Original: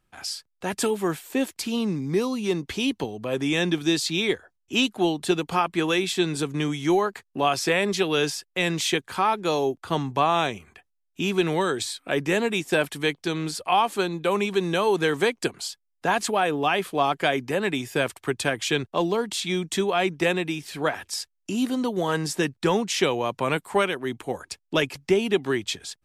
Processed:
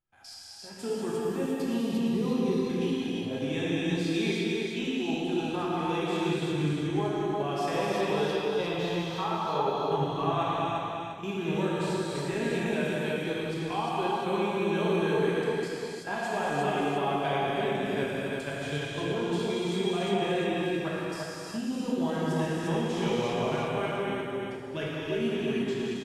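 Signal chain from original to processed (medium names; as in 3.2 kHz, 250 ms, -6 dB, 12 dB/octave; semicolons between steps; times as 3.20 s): treble shelf 3.2 kHz -5.5 dB; harmonic-percussive split percussive -8 dB; 7.70–9.80 s: ten-band graphic EQ 250 Hz -4 dB, 1 kHz +9 dB, 2 kHz -7 dB, 4 kHz +4 dB, 8 kHz -10 dB; level held to a coarse grid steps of 14 dB; feedback comb 810 Hz, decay 0.34 s, mix 70%; feedback delay 350 ms, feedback 31%, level -4 dB; gated-style reverb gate 380 ms flat, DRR -6.5 dB; trim +3.5 dB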